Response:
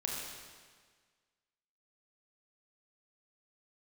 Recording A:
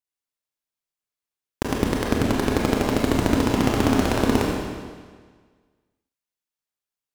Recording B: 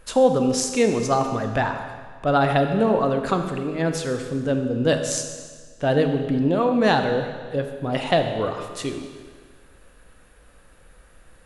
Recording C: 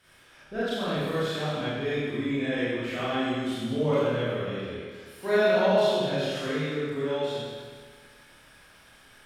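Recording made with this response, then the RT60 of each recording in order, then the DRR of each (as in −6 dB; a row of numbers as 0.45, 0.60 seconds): A; 1.6, 1.6, 1.6 seconds; −2.5, 5.5, −11.5 decibels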